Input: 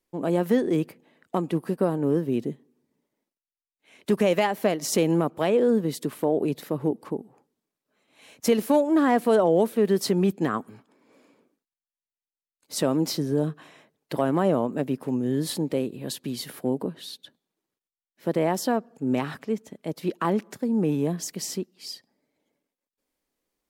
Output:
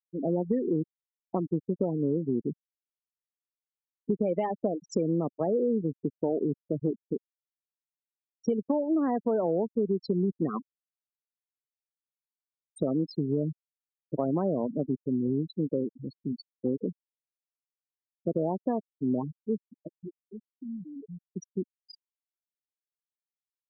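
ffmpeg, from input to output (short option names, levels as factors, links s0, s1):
-filter_complex "[0:a]asettb=1/sr,asplit=3[s0][s1][s2];[s0]atrim=end=19.874[s3];[s1]atrim=start=19.87:end=21.26,asetpts=PTS-STARTPTS,afade=t=in:d=0.004:c=qsin,afade=t=out:st=1.386:d=0.004:c=qsin,acompressor=threshold=0.0224:ratio=12:attack=3.2:release=140:knee=1:detection=peak[s4];[s2]atrim=start=21.256[s5];[s3][s4]acrossfade=d=0.004:c1=hsin:c2=qsin[s6];[s6][s5]acrossfade=d=0.004:c1=qsin:c2=hsin,afftfilt=real='re*gte(hypot(re,im),0.126)':imag='im*gte(hypot(re,im),0.126)':win_size=1024:overlap=0.75,equalizer=f=2700:w=0.62:g=-13,acompressor=threshold=0.0708:ratio=6"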